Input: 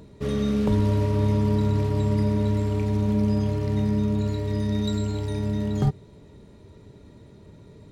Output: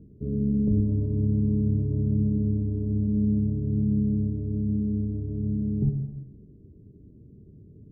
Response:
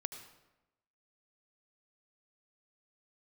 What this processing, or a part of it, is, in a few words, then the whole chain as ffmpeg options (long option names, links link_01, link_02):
next room: -filter_complex "[0:a]lowpass=frequency=350:width=0.5412,lowpass=frequency=350:width=1.3066[link_01];[1:a]atrim=start_sample=2205[link_02];[link_01][link_02]afir=irnorm=-1:irlink=0"